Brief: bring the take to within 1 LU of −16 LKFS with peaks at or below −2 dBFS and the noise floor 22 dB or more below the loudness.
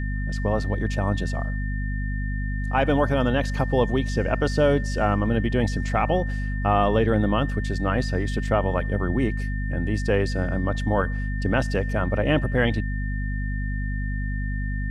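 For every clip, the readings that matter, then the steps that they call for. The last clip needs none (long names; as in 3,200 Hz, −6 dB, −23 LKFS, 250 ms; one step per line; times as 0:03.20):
mains hum 50 Hz; hum harmonics up to 250 Hz; level of the hum −24 dBFS; interfering tone 1,800 Hz; level of the tone −36 dBFS; integrated loudness −24.5 LKFS; sample peak −8.0 dBFS; target loudness −16.0 LKFS
→ mains-hum notches 50/100/150/200/250 Hz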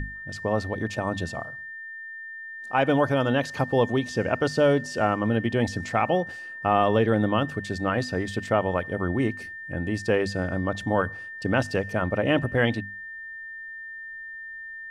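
mains hum none found; interfering tone 1,800 Hz; level of the tone −36 dBFS
→ notch filter 1,800 Hz, Q 30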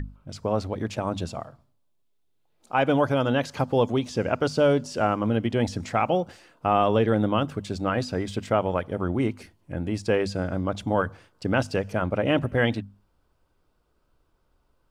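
interfering tone none found; integrated loudness −25.5 LKFS; sample peak −9.0 dBFS; target loudness −16.0 LKFS
→ level +9.5 dB
brickwall limiter −2 dBFS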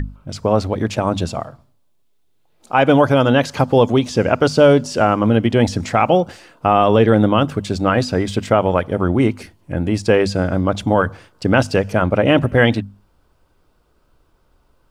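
integrated loudness −16.5 LKFS; sample peak −2.0 dBFS; background noise floor −59 dBFS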